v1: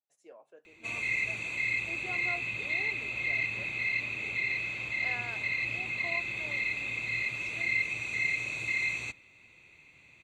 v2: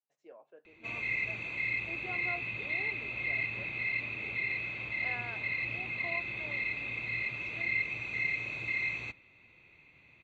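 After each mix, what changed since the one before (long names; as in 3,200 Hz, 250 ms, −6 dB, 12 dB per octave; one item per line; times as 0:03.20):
master: add high-frequency loss of the air 210 metres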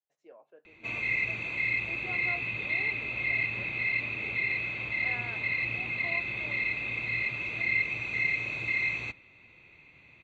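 background +4.0 dB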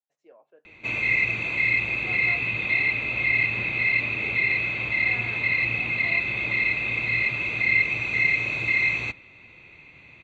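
background +7.0 dB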